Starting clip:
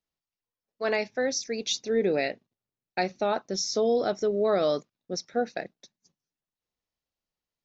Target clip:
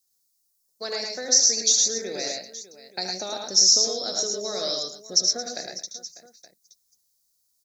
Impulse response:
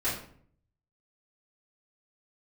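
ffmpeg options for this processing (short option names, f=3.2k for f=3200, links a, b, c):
-filter_complex "[0:a]acrossover=split=510|2200|5100[a][b][c][d];[a]acompressor=threshold=-38dB:ratio=4[e];[b]acompressor=threshold=-34dB:ratio=4[f];[c]acompressor=threshold=-44dB:ratio=4[g];[d]acompressor=threshold=-38dB:ratio=4[h];[e][f][g][h]amix=inputs=4:normalize=0,aecho=1:1:76|108|124|222|598|873:0.376|0.668|0.376|0.168|0.141|0.112,aexciter=amount=13.5:drive=4.8:freq=4.3k,volume=-2dB"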